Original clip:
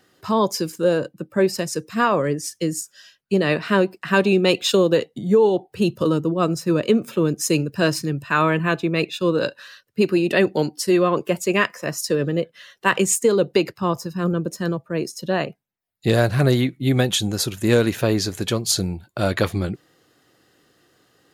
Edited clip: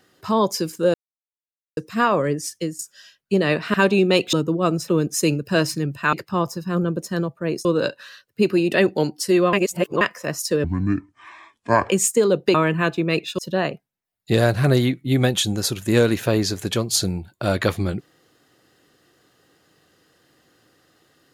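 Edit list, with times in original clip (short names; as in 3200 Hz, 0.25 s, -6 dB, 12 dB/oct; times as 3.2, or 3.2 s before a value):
0.94–1.77 mute
2.49–2.79 fade out equal-power, to -16.5 dB
3.74–4.08 cut
4.67–6.1 cut
6.65–7.15 cut
8.4–9.24 swap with 13.62–15.14
11.12–11.6 reverse
12.23–12.97 speed 59%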